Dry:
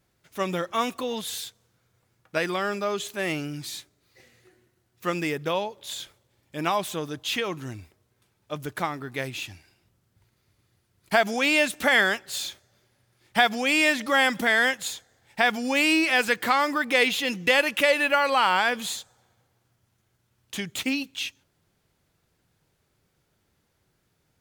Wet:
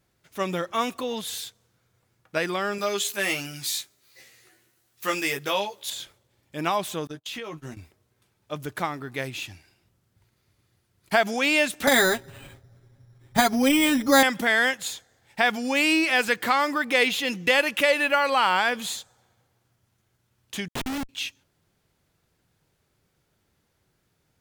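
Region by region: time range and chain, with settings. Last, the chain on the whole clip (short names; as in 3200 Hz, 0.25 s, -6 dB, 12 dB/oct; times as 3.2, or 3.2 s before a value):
2.78–5.9 tilt +2.5 dB/oct + doubler 15 ms -3.5 dB
7.07–7.77 gate -37 dBFS, range -34 dB + doubler 13 ms -5 dB + compressor, threshold -32 dBFS
11.87–14.23 RIAA curve playback + comb 7.4 ms, depth 72% + careless resampling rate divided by 8×, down filtered, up hold
20.68–21.09 HPF 71 Hz 24 dB/oct + Schmitt trigger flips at -27 dBFS
whole clip: dry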